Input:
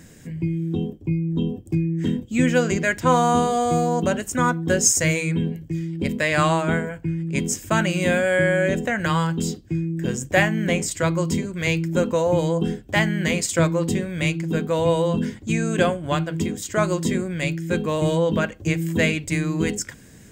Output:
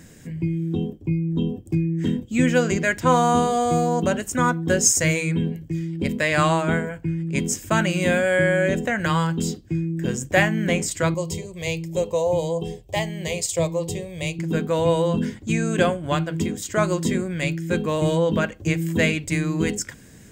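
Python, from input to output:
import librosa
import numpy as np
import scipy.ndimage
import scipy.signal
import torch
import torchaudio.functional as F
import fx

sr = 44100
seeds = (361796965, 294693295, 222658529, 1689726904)

y = fx.fixed_phaser(x, sr, hz=610.0, stages=4, at=(11.14, 14.39))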